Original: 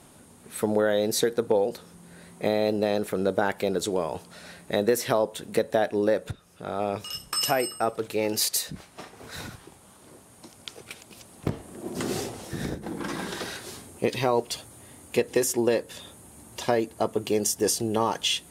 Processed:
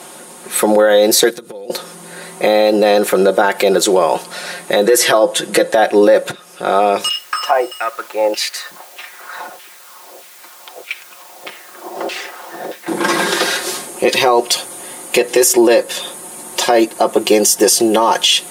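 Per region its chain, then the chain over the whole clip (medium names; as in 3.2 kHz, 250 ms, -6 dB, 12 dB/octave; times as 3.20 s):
1.30–1.70 s: compression 12:1, threshold -35 dBFS + peaking EQ 830 Hz -13 dB 2.3 oct
4.85–5.75 s: low-pass 12 kHz 24 dB/octave + comb 6.2 ms, depth 60%
7.09–12.88 s: LFO band-pass saw down 1.6 Hz 560–2900 Hz + word length cut 10-bit, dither triangular
whole clip: high-pass 370 Hz 12 dB/octave; comb 5.6 ms, depth 59%; loudness maximiser +19 dB; trim -1 dB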